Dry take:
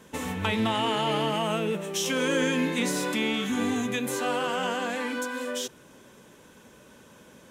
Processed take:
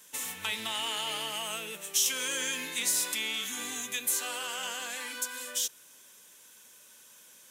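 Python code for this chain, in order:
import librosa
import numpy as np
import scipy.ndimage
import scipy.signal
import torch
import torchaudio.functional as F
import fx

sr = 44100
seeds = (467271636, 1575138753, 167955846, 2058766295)

y = librosa.effects.preemphasis(x, coef=0.97, zi=[0.0])
y = y * 10.0 ** (6.5 / 20.0)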